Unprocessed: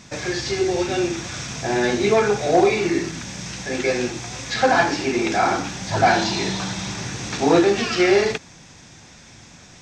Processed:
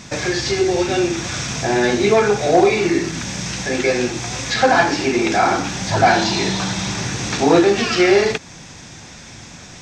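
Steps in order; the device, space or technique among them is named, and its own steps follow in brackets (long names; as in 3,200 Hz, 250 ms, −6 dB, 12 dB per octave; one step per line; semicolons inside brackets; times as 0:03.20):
parallel compression (in parallel at −0.5 dB: downward compressor, threshold −29 dBFS, peak gain reduction 17 dB)
on the sum: level +1.5 dB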